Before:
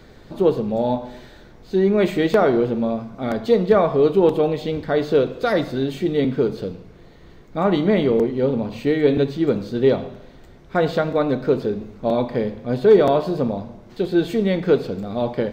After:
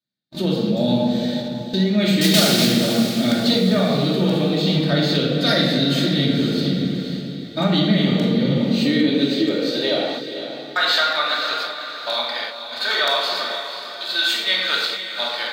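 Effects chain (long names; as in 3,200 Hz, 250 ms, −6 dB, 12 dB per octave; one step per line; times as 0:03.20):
0:02.21–0:02.74: one scale factor per block 3 bits
pitch vibrato 4 Hz 17 cents
rectangular room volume 1,200 cubic metres, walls mixed, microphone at 2.7 metres
high-pass filter sweep 160 Hz → 1,100 Hz, 0:08.61–0:10.49
downward compressor 2.5 to 1, threshold −14 dBFS, peak gain reduction 9 dB
graphic EQ with 15 bands 100 Hz −5 dB, 400 Hz −10 dB, 1,000 Hz −9 dB, 4,000 Hz +11 dB
noise gate −30 dBFS, range −49 dB
high-shelf EQ 2,600 Hz +9 dB
feedback delay with all-pass diffusion 496 ms, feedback 42%, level −9 dB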